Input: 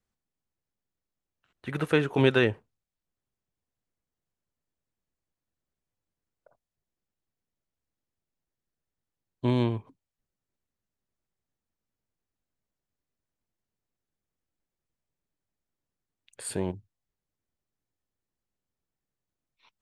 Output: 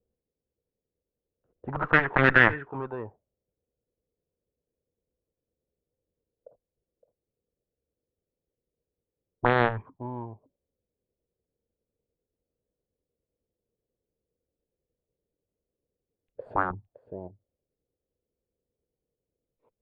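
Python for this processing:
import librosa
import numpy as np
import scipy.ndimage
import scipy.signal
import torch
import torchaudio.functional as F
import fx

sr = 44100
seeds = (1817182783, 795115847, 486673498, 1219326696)

p1 = fx.peak_eq(x, sr, hz=63.0, db=4.5, octaves=1.2)
p2 = p1 + fx.echo_single(p1, sr, ms=564, db=-14.0, dry=0)
p3 = fx.cheby_harmonics(p2, sr, harmonics=(2, 4, 5, 7), levels_db=(-11, -19, -32, -12), full_scale_db=-7.0)
p4 = fx.air_absorb(p3, sr, metres=60.0)
p5 = fx.over_compress(p4, sr, threshold_db=-28.0, ratio=-1.0)
p6 = p4 + (p5 * 10.0 ** (0.0 / 20.0))
p7 = fx.envelope_lowpass(p6, sr, base_hz=480.0, top_hz=1800.0, q=5.3, full_db=-24.0, direction='up')
y = p7 * 10.0 ** (-2.5 / 20.0)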